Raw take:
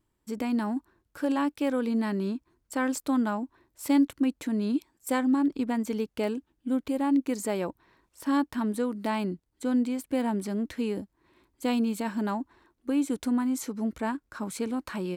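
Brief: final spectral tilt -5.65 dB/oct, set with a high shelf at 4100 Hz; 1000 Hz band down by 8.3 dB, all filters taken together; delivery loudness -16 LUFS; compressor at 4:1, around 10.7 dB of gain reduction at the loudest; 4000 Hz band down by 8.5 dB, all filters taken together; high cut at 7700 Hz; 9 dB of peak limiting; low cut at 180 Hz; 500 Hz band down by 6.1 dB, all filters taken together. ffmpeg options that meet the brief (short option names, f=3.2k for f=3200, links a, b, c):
-af "highpass=180,lowpass=7.7k,equalizer=f=500:t=o:g=-5,equalizer=f=1k:t=o:g=-8,equalizer=f=4k:t=o:g=-8,highshelf=f=4.1k:g=-5,acompressor=threshold=-35dB:ratio=4,volume=27dB,alimiter=limit=-8dB:level=0:latency=1"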